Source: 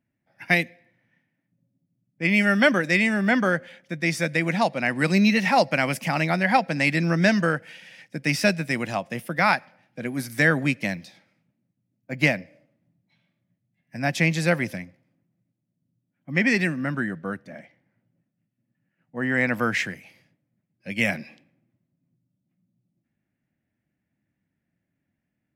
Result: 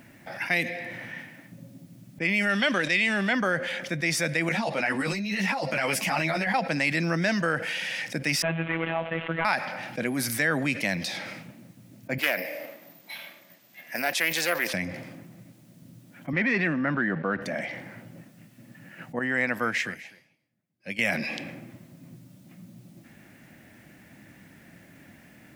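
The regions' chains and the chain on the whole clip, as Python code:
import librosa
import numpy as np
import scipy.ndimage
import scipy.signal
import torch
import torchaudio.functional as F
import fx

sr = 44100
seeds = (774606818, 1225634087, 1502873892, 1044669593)

y = fx.chain(x, sr, fx.law_mismatch(coded='A'),
    fx.lowpass(hz=11000.0, slope=24),
    fx.peak_eq(hz=3300.0, db=9.0, octaves=0.96), at=(2.49, 3.33))
y = fx.chain(y, sr, fx.over_compress(threshold_db=-24.0, ratio=-0.5),
    fx.ensemble(), at=(4.49, 6.54))
y = fx.chain(y, sr, fx.cvsd(bps=16000),
    fx.robotise(hz=164.0), at=(8.42, 9.45))
y = fx.chain(y, sr, fx.resample_bad(factor=3, down='none', up='zero_stuff'),
    fx.bandpass_edges(low_hz=440.0, high_hz=6800.0),
    fx.doppler_dist(depth_ms=0.23), at=(12.18, 14.74))
y = fx.chain(y, sr, fx.leveller(passes=1),
    fx.bandpass_edges(low_hz=120.0, high_hz=2600.0), at=(16.33, 17.42))
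y = fx.chain(y, sr, fx.echo_single(ms=247, db=-21.0),
    fx.upward_expand(threshold_db=-41.0, expansion=2.5), at=(19.19, 20.99))
y = fx.low_shelf(y, sr, hz=250.0, db=-9.5)
y = fx.env_flatten(y, sr, amount_pct=70)
y = y * librosa.db_to_amplitude(-8.5)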